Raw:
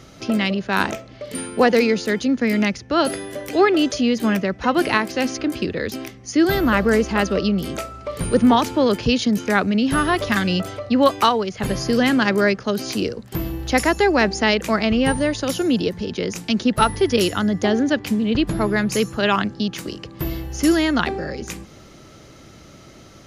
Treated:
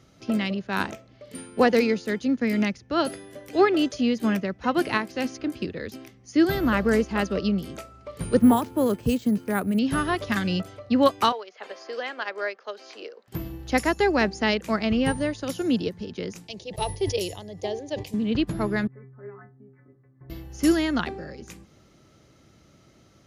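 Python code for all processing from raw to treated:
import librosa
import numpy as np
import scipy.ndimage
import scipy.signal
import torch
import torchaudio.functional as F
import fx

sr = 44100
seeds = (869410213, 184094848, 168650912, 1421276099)

y = fx.chain(x, sr, fx.high_shelf(hz=2000.0, db=-10.0),
    fx.resample_bad(factor=4, down='none', up='hold'), at=(8.39, 9.79))
y = fx.chain(y, sr, fx.highpass(hz=480.0, slope=24),
    fx.air_absorb(metres=140.0),
    fx.band_squash(depth_pct=40), at=(11.32, 13.28))
y = fx.chain(y, sr, fx.fixed_phaser(hz=580.0, stages=4),
    fx.sustainer(db_per_s=83.0), at=(16.47, 18.14))
y = fx.chain(y, sr, fx.steep_lowpass(hz=2100.0, slope=96),
    fx.stiff_resonator(f0_hz=130.0, decay_s=0.38, stiffness=0.008), at=(18.87, 20.3))
y = fx.highpass(y, sr, hz=120.0, slope=6)
y = fx.low_shelf(y, sr, hz=160.0, db=9.5)
y = fx.upward_expand(y, sr, threshold_db=-30.0, expansion=1.5)
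y = y * 10.0 ** (-3.0 / 20.0)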